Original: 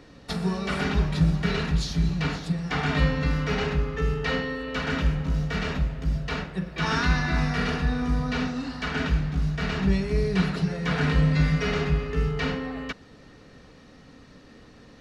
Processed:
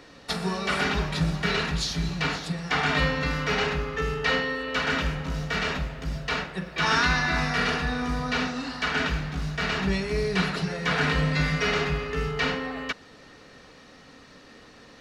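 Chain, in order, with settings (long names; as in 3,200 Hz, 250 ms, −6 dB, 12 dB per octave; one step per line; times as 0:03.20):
low-shelf EQ 340 Hz −11.5 dB
level +5 dB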